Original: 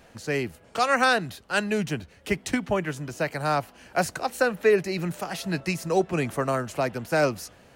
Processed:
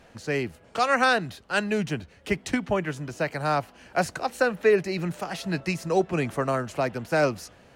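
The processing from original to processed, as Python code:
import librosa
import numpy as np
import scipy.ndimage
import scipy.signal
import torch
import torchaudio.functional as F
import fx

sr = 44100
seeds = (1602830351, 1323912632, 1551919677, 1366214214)

y = fx.high_shelf(x, sr, hz=9900.0, db=-10.0)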